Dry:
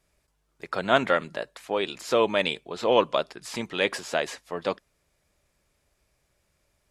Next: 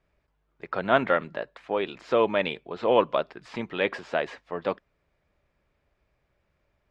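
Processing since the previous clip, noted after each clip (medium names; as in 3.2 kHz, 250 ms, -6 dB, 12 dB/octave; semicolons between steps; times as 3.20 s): low-pass 2.5 kHz 12 dB/octave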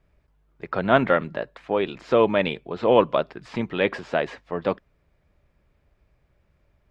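bass shelf 260 Hz +8.5 dB; trim +2 dB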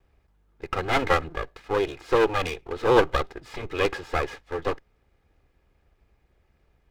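comb filter that takes the minimum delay 2.4 ms; trim +1 dB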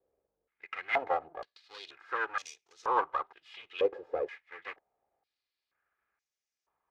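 step-sequenced band-pass 2.1 Hz 510–6100 Hz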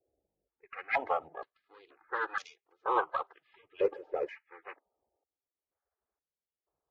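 coarse spectral quantiser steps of 30 dB; level-controlled noise filter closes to 650 Hz, open at -28.5 dBFS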